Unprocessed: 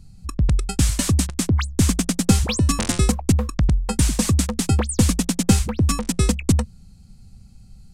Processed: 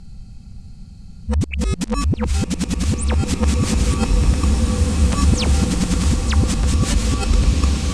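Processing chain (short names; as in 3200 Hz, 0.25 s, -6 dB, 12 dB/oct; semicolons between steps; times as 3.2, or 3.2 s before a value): whole clip reversed; LPF 11000 Hz 12 dB/oct; high shelf 8400 Hz -11.5 dB; in parallel at +2 dB: compressor, threshold -26 dBFS, peak gain reduction 15.5 dB; on the sum: limiter -13.5 dBFS, peak gain reduction 11 dB; spectral freeze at 4.48, 0.64 s; bloom reverb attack 2.44 s, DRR 0 dB; gain +1.5 dB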